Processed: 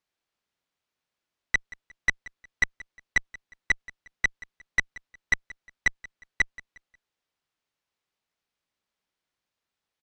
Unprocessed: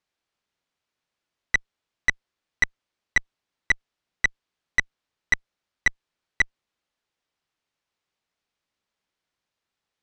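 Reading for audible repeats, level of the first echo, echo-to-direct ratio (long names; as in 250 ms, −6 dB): 2, −20.5 dB, −20.0 dB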